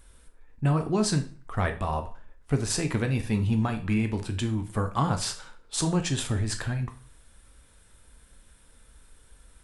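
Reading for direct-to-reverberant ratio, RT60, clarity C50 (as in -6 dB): 6.0 dB, 0.40 s, 12.5 dB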